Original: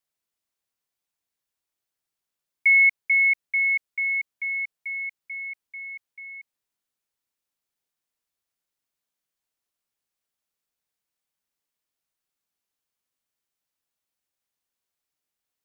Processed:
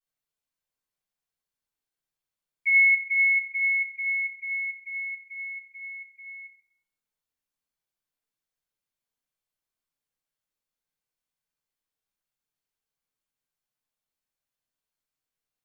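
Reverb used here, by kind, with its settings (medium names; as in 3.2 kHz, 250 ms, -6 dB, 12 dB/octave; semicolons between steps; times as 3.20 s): simulated room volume 130 m³, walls mixed, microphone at 3.7 m; trim -16 dB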